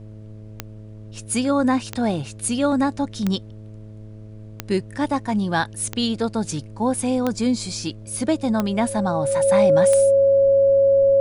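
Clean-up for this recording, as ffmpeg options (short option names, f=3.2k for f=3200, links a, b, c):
-af "adeclick=t=4,bandreject=f=107.2:t=h:w=4,bandreject=f=214.4:t=h:w=4,bandreject=f=321.6:t=h:w=4,bandreject=f=428.8:t=h:w=4,bandreject=f=536:t=h:w=4,bandreject=f=643.2:t=h:w=4,bandreject=f=550:w=30,agate=range=-21dB:threshold=-31dB"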